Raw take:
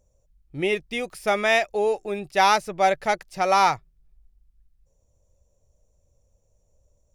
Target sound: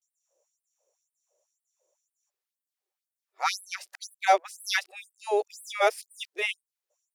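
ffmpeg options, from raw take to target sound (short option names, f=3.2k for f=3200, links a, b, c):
-af "areverse,afftfilt=real='re*gte(b*sr/1024,320*pow(8000/320,0.5+0.5*sin(2*PI*2*pts/sr)))':imag='im*gte(b*sr/1024,320*pow(8000/320,0.5+0.5*sin(2*PI*2*pts/sr)))':win_size=1024:overlap=0.75"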